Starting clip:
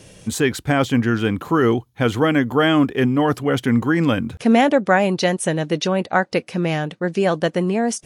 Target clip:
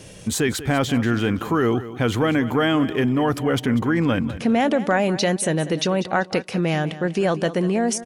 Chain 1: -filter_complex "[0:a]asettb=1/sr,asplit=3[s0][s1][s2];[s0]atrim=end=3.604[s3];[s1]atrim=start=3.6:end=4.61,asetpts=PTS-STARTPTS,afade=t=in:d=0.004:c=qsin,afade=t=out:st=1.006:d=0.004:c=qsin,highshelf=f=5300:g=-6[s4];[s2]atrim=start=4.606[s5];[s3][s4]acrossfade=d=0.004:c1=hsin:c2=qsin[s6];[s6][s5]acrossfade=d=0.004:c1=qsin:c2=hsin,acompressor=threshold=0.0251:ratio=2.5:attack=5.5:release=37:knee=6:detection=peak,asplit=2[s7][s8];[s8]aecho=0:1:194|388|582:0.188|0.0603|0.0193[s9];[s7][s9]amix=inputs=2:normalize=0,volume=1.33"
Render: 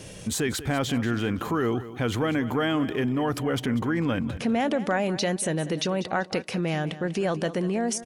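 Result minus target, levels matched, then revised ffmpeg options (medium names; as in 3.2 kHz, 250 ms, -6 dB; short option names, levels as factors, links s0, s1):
compression: peak gain reduction +5.5 dB
-filter_complex "[0:a]asettb=1/sr,asplit=3[s0][s1][s2];[s0]atrim=end=3.604[s3];[s1]atrim=start=3.6:end=4.61,asetpts=PTS-STARTPTS,afade=t=in:d=0.004:c=qsin,afade=t=out:st=1.006:d=0.004:c=qsin,highshelf=f=5300:g=-6[s4];[s2]atrim=start=4.606[s5];[s3][s4]acrossfade=d=0.004:c1=hsin:c2=qsin[s6];[s6][s5]acrossfade=d=0.004:c1=qsin:c2=hsin,acompressor=threshold=0.075:ratio=2.5:attack=5.5:release=37:knee=6:detection=peak,asplit=2[s7][s8];[s8]aecho=0:1:194|388|582:0.188|0.0603|0.0193[s9];[s7][s9]amix=inputs=2:normalize=0,volume=1.33"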